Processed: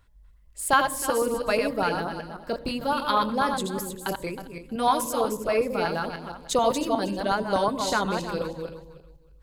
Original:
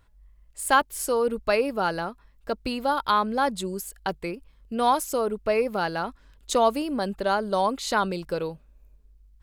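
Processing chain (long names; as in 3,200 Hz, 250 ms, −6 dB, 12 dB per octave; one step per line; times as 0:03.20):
feedback delay that plays each chunk backwards 158 ms, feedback 43%, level −5 dB
auto-filter notch saw up 8.2 Hz 240–2,700 Hz
on a send: EQ curve with evenly spaced ripples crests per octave 1.1, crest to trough 16 dB + convolution reverb RT60 0.50 s, pre-delay 77 ms, DRR 17.5 dB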